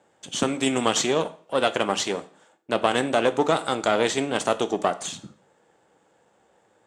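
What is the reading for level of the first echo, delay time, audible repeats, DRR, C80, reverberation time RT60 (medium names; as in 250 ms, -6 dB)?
no echo, no echo, no echo, 11.0 dB, 20.5 dB, 0.45 s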